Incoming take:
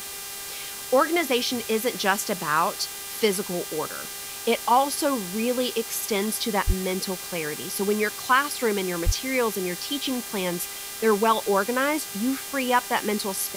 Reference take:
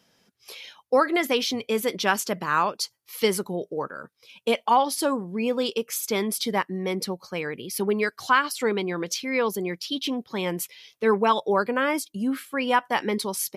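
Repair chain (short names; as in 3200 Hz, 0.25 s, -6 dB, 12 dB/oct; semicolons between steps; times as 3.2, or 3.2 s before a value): de-hum 398.9 Hz, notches 39; 6.66–6.78 HPF 140 Hz 24 dB/oct; 9.05–9.17 HPF 140 Hz 24 dB/oct; noise print and reduce 25 dB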